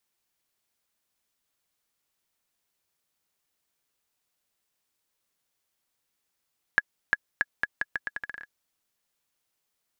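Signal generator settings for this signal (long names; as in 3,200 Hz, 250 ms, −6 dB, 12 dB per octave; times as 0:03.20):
bouncing ball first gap 0.35 s, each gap 0.8, 1,680 Hz, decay 35 ms −7 dBFS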